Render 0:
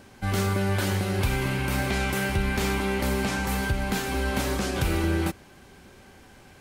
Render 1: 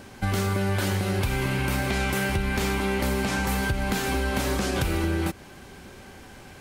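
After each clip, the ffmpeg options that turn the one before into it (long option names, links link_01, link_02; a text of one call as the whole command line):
ffmpeg -i in.wav -af "acompressor=threshold=-28dB:ratio=4,volume=5.5dB" out.wav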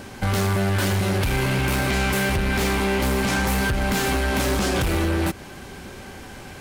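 ffmpeg -i in.wav -af "asoftclip=type=hard:threshold=-25dB,volume=6.5dB" out.wav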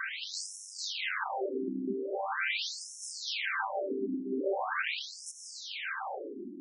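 ffmpeg -i in.wav -filter_complex "[0:a]asplit=2[link_01][link_02];[link_02]highpass=frequency=720:poles=1,volume=16dB,asoftclip=type=tanh:threshold=-18dB[link_03];[link_01][link_03]amix=inputs=2:normalize=0,lowpass=frequency=4100:poles=1,volume=-6dB,acompressor=threshold=-25dB:ratio=6,afftfilt=real='re*between(b*sr/1024,260*pow(7600/260,0.5+0.5*sin(2*PI*0.42*pts/sr))/1.41,260*pow(7600/260,0.5+0.5*sin(2*PI*0.42*pts/sr))*1.41)':imag='im*between(b*sr/1024,260*pow(7600/260,0.5+0.5*sin(2*PI*0.42*pts/sr))/1.41,260*pow(7600/260,0.5+0.5*sin(2*PI*0.42*pts/sr))*1.41)':win_size=1024:overlap=0.75,volume=2dB" out.wav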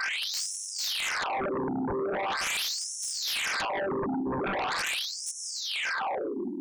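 ffmpeg -i in.wav -af "aeval=exprs='0.0944*sin(PI/2*4.47*val(0)/0.0944)':channel_layout=same,volume=-6.5dB" out.wav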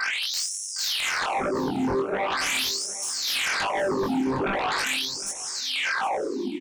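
ffmpeg -i in.wav -af "flanger=delay=18.5:depth=4.7:speed=1.3,aecho=1:1:761|1522:0.119|0.0214,volume=7dB" out.wav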